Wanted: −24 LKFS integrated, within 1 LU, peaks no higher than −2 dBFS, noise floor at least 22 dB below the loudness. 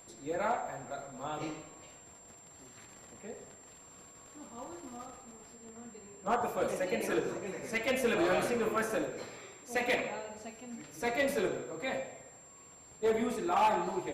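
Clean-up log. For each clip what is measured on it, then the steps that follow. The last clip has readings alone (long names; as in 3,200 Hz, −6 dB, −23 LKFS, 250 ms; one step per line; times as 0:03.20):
share of clipped samples 0.3%; peaks flattened at −22.5 dBFS; interfering tone 7,400 Hz; level of the tone −54 dBFS; integrated loudness −33.5 LKFS; sample peak −22.5 dBFS; target loudness −24.0 LKFS
→ clipped peaks rebuilt −22.5 dBFS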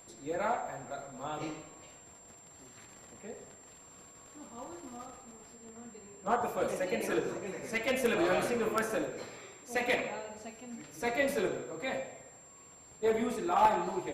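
share of clipped samples 0.0%; interfering tone 7,400 Hz; level of the tone −54 dBFS
→ notch filter 7,400 Hz, Q 30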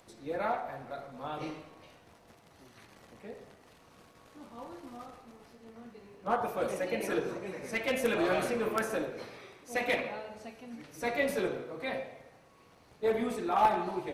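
interfering tone none found; integrated loudness −33.0 LKFS; sample peak −13.5 dBFS; target loudness −24.0 LKFS
→ level +9 dB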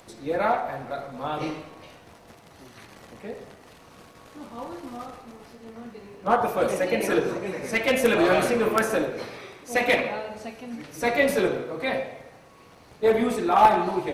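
integrated loudness −24.0 LKFS; sample peak −4.5 dBFS; background noise floor −51 dBFS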